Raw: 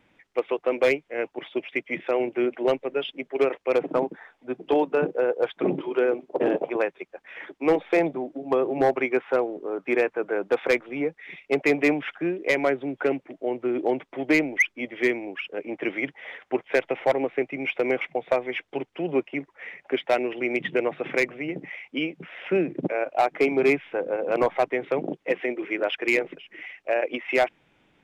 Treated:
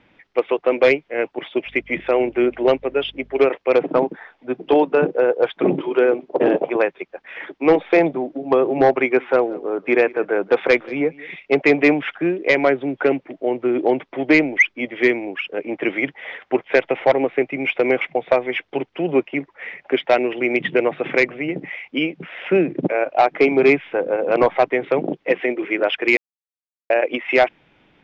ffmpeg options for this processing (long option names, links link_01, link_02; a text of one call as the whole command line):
ffmpeg -i in.wav -filter_complex "[0:a]asettb=1/sr,asplit=3[link_01][link_02][link_03];[link_01]atrim=end=1.664[link_04];[link_02]atrim=start=1.66:end=3.47,asetpts=PTS-STARTPTS,afade=type=in:duration=0.004:curve=qsin,afade=type=out:start_time=1.806:duration=0.004:curve=qsin,aeval=exprs='val(0)+0.00178*(sin(2*PI*50*n/s)+sin(2*PI*2*50*n/s)/2+sin(2*PI*3*50*n/s)/3+sin(2*PI*4*50*n/s)/4+sin(2*PI*5*50*n/s)/5)':channel_layout=same[link_05];[link_03]atrim=start=3.466[link_06];[link_04][link_05]acrossfade=duration=0.004:curve1=hsin:curve2=qsin[link_07];[link_07][link_06]acrossfade=duration=0.004:curve1=qsin:curve2=hsin,asettb=1/sr,asplit=3[link_08][link_09][link_10];[link_08]atrim=end=8.994[link_11];[link_09]atrim=start=8.99:end=11.31,asetpts=PTS-STARTPTS,afade=type=in:duration=0.004:curve=qsin,afade=type=out:start_time=2.316:duration=0.004:curve=qsin,aecho=1:1:180:0.0794,atrim=end_sample=102312[link_12];[link_10]atrim=start=11.306[link_13];[link_11][link_12]acrossfade=duration=0.004:curve1=hsin:curve2=qsin[link_14];[link_14][link_13]acrossfade=duration=0.004:curve1=qsin:curve2=hsin,asplit=3[link_15][link_16][link_17];[link_15]atrim=end=26.17,asetpts=PTS-STARTPTS,afade=type=out:start_time=26.166:duration=0.004:curve=hsin[link_18];[link_16]atrim=start=26.17:end=26.9,asetpts=PTS-STARTPTS,volume=0[link_19];[link_17]atrim=start=26.9,asetpts=PTS-STARTPTS,afade=type=in:duration=0.004:curve=hsin[link_20];[link_18][link_19][link_20]concat=n=3:v=0:a=1,lowpass=frequency=5200:width=0.5412,lowpass=frequency=5200:width=1.3066,volume=6.5dB" out.wav